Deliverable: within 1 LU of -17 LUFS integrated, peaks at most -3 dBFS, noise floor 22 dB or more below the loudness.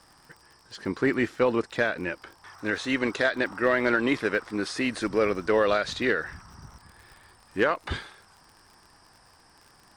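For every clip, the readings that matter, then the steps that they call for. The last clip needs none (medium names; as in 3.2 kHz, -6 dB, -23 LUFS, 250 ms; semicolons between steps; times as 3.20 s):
tick rate 49 per s; loudness -26.5 LUFS; peak level -11.5 dBFS; loudness target -17.0 LUFS
-> de-click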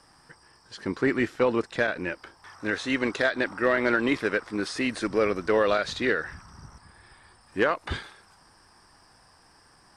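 tick rate 0.30 per s; loudness -26.5 LUFS; peak level -11.5 dBFS; loudness target -17.0 LUFS
-> trim +9.5 dB; peak limiter -3 dBFS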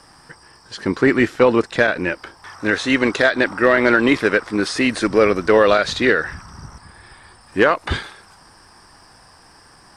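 loudness -17.0 LUFS; peak level -3.0 dBFS; noise floor -49 dBFS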